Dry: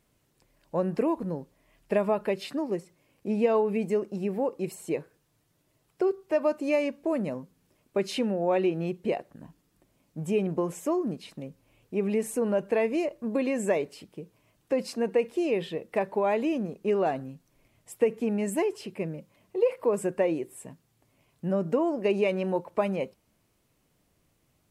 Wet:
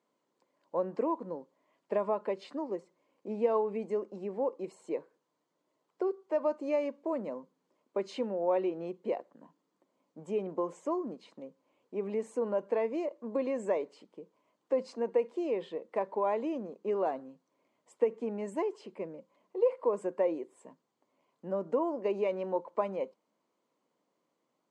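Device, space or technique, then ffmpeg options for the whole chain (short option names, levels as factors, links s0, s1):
television speaker: -af "highpass=f=220:w=0.5412,highpass=f=220:w=1.3066,equalizer=f=520:t=q:w=4:g=5,equalizer=f=1000:t=q:w=4:g=8,equalizer=f=1700:t=q:w=4:g=-4,equalizer=f=2600:t=q:w=4:g=-7,equalizer=f=3700:t=q:w=4:g=-4,equalizer=f=5400:t=q:w=4:g=-7,lowpass=f=6600:w=0.5412,lowpass=f=6600:w=1.3066,volume=0.447"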